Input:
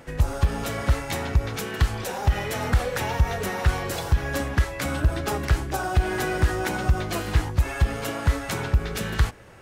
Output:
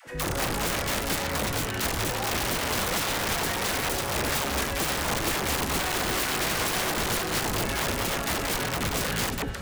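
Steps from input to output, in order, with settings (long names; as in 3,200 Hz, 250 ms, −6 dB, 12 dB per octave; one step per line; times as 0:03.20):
delay that swaps between a low-pass and a high-pass 176 ms, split 830 Hz, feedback 67%, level −5 dB
wrap-around overflow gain 22 dB
all-pass dispersion lows, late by 73 ms, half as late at 450 Hz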